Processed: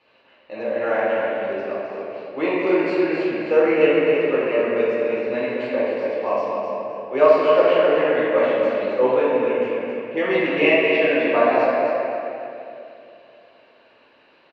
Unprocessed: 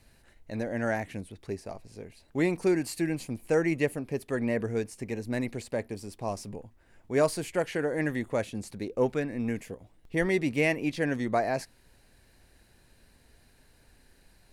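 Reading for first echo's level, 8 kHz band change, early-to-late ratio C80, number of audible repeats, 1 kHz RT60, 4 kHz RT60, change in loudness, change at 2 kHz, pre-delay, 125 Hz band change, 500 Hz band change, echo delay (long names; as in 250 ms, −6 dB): −5.5 dB, below −15 dB, −2.5 dB, 1, 2.5 s, 1.8 s, +10.5 dB, +10.0 dB, 6 ms, −5.5 dB, +13.5 dB, 260 ms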